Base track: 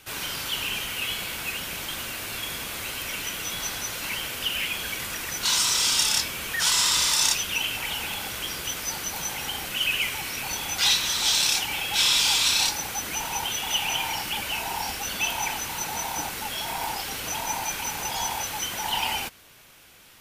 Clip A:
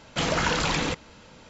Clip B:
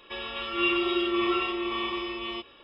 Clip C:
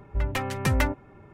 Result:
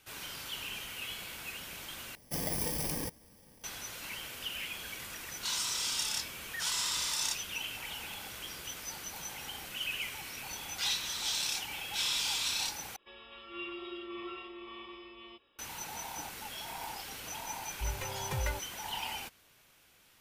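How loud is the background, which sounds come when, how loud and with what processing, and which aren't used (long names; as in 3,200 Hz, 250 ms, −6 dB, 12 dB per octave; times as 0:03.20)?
base track −11.5 dB
0:02.15: overwrite with A −9.5 dB + samples in bit-reversed order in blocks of 32 samples
0:12.96: overwrite with B −16.5 dB
0:17.66: mix in C −15 dB + comb filter 2 ms, depth 96%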